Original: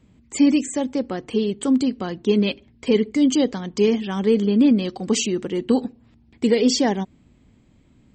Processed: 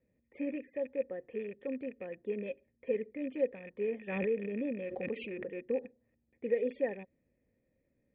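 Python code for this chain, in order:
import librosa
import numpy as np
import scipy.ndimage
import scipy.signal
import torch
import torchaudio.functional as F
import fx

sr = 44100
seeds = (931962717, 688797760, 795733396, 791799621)

y = fx.rattle_buzz(x, sr, strikes_db=-29.0, level_db=-20.0)
y = fx.formant_cascade(y, sr, vowel='e')
y = fx.pre_swell(y, sr, db_per_s=37.0, at=(4.07, 5.48), fade=0.02)
y = F.gain(torch.from_numpy(y), -4.5).numpy()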